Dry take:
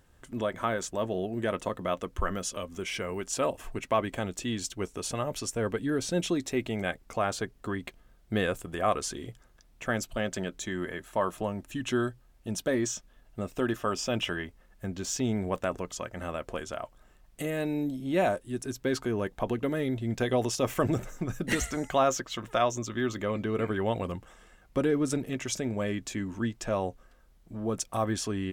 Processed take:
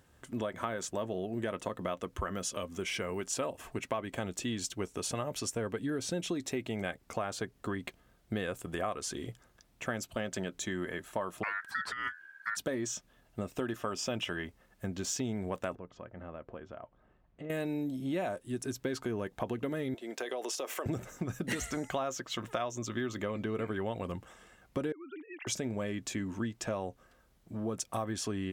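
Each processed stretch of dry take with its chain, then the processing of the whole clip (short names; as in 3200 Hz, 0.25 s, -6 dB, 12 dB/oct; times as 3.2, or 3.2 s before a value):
11.43–12.57 tilt -1.5 dB/oct + negative-ratio compressor -28 dBFS, ratio -0.5 + ring modulator 1600 Hz
15.75–17.5 tape spacing loss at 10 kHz 41 dB + compressor 1.5:1, threshold -53 dBFS
19.94–20.86 HPF 350 Hz 24 dB/oct + compressor 5:1, threshold -32 dBFS
24.92–25.47 sine-wave speech + HPF 1100 Hz 6 dB/oct + compressor 5:1, threshold -40 dBFS
whole clip: HPF 67 Hz; compressor, threshold -31 dBFS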